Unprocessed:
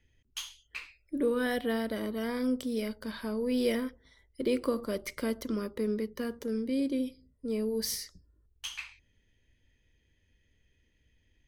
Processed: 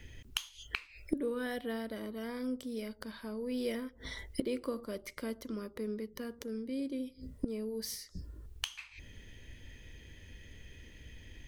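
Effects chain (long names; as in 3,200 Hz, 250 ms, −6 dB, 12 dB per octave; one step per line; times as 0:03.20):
gate with flip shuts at −37 dBFS, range −25 dB
level +18 dB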